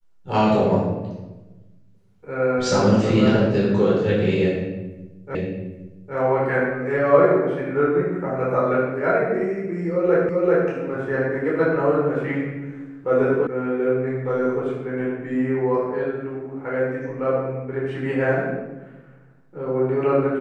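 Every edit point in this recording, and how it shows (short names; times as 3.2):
5.35 repeat of the last 0.81 s
10.29 repeat of the last 0.39 s
13.47 sound cut off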